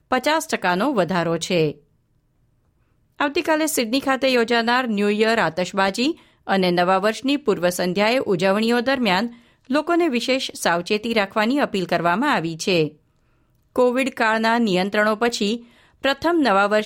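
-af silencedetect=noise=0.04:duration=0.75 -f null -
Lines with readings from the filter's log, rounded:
silence_start: 1.71
silence_end: 3.21 | silence_duration: 1.49
silence_start: 12.88
silence_end: 13.76 | silence_duration: 0.88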